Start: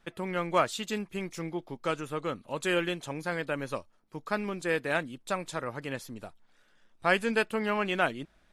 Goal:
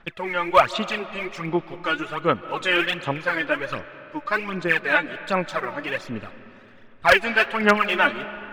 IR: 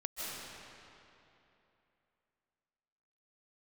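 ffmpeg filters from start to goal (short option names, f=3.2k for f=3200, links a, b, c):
-filter_complex "[0:a]lowpass=2.6k,tiltshelf=f=1.2k:g=-7,aphaser=in_gain=1:out_gain=1:delay=3.5:decay=0.74:speed=1.3:type=sinusoidal,aeval=exprs='0.282*(abs(mod(val(0)/0.282+3,4)-2)-1)':c=same,asplit=2[a][b];[1:a]atrim=start_sample=2205,lowpass=3.6k[c];[b][c]afir=irnorm=-1:irlink=0,volume=-15dB[d];[a][d]amix=inputs=2:normalize=0,volume=6dB"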